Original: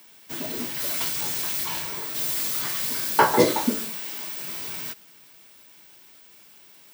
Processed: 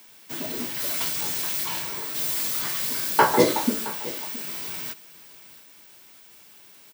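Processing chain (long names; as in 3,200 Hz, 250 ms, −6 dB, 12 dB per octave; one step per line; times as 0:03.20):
high-pass filter 83 Hz
bit reduction 9 bits
on a send: single-tap delay 669 ms −18 dB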